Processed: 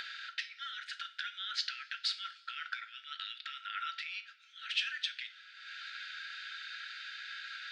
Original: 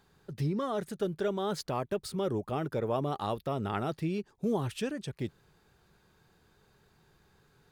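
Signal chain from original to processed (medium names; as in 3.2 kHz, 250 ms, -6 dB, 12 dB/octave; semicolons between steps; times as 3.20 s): low-pass 3.9 kHz 24 dB/octave; treble shelf 2.1 kHz +11 dB; upward compressor, threshold -45 dBFS; peak limiter -26 dBFS, peak gain reduction 11.5 dB; compression 6:1, threshold -42 dBFS, peak gain reduction 12 dB; brick-wall FIR high-pass 1.3 kHz; two-slope reverb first 0.32 s, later 2.2 s, from -20 dB, DRR 6.5 dB; tape noise reduction on one side only decoder only; trim +13.5 dB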